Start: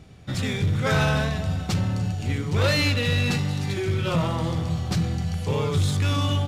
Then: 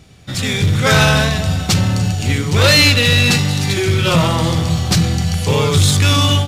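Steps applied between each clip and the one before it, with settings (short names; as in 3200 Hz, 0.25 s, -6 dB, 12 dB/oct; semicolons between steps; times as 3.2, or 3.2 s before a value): high shelf 2400 Hz +9 dB; AGC gain up to 7.5 dB; gain +2 dB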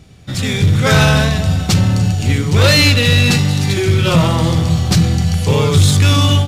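low shelf 460 Hz +4.5 dB; gain -1.5 dB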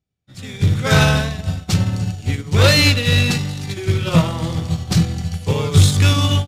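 upward expander 2.5:1, over -33 dBFS; gain +1 dB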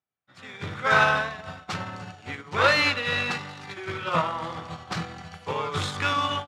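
band-pass 1200 Hz, Q 1.5; gain +2.5 dB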